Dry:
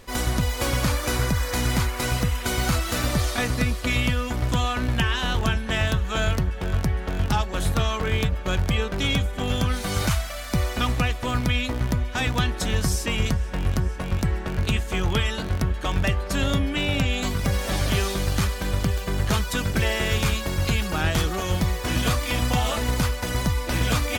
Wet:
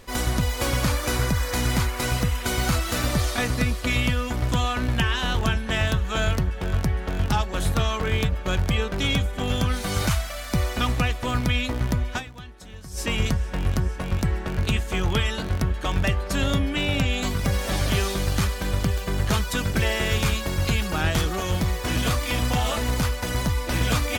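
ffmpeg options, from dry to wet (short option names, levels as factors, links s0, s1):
-filter_complex "[0:a]asettb=1/sr,asplit=3[s0][s1][s2];[s0]atrim=end=21.184[s3];[s1]atrim=start=21.18:end=23.74,asetpts=PTS-STARTPTS,afade=t=in:d=0.004:c=qsin,afade=t=out:st=2.556:d=0.004:c=qsin,asoftclip=type=hard:threshold=0.141[s4];[s2]atrim=start=23.736[s5];[s3][s4]acrossfade=d=0.004:c1=hsin:c2=qsin[s6];[s6][s5]acrossfade=d=0.004:c1=qsin:c2=hsin,asplit=3[s7][s8][s9];[s7]atrim=end=12.46,asetpts=PTS-STARTPTS,afade=t=out:st=12.17:d=0.29:c=exp:silence=0.125893[s10];[s8]atrim=start=12.46:end=12.7,asetpts=PTS-STARTPTS,volume=0.126[s11];[s9]atrim=start=12.7,asetpts=PTS-STARTPTS,afade=t=in:d=0.29:c=exp:silence=0.125893[s12];[s10][s11][s12]concat=n=3:v=0:a=1"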